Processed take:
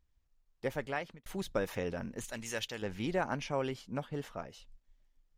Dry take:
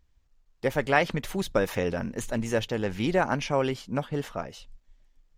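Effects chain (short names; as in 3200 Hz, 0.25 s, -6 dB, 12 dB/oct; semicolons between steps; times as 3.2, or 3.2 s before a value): 0.67–1.26 fade out; 2.24–2.82 tilt shelf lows -8 dB, about 1200 Hz; gain -8.5 dB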